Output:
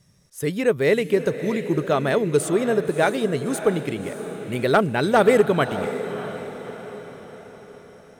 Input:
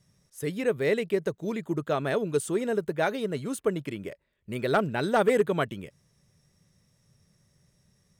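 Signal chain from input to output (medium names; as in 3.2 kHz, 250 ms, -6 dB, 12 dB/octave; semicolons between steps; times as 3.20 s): echo that smears into a reverb 615 ms, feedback 50%, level -11 dB; trim +6.5 dB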